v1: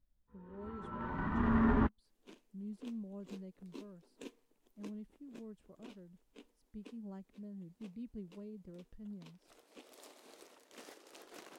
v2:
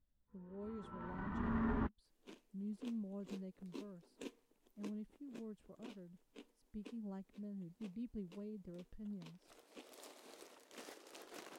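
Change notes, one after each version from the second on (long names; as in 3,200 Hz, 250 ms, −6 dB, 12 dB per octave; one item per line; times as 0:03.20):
first sound −8.0 dB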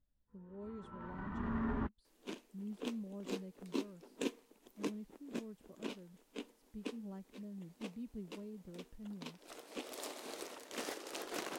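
second sound +11.5 dB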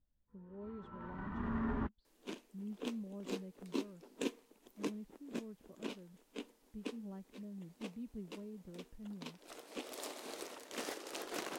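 speech: add high-frequency loss of the air 130 metres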